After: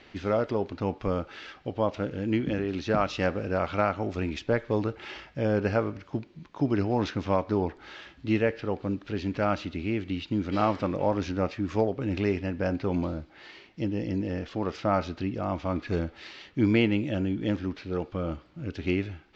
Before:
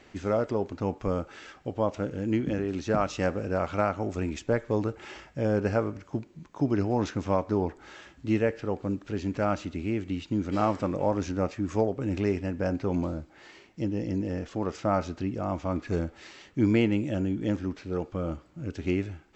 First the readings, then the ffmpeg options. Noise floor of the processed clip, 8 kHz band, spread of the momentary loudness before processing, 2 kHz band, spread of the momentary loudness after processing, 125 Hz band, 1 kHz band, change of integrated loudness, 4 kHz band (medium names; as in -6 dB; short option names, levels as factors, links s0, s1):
-55 dBFS, no reading, 10 LU, +3.0 dB, 11 LU, 0.0 dB, +1.0 dB, +0.5 dB, +4.5 dB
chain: -af "lowpass=f=4300:w=0.5412,lowpass=f=4300:w=1.3066,highshelf=f=3200:g=11.5"